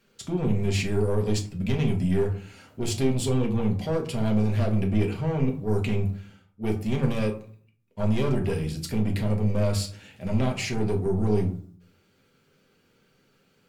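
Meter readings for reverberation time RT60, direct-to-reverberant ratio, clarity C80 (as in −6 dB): 0.50 s, 1.0 dB, 14.5 dB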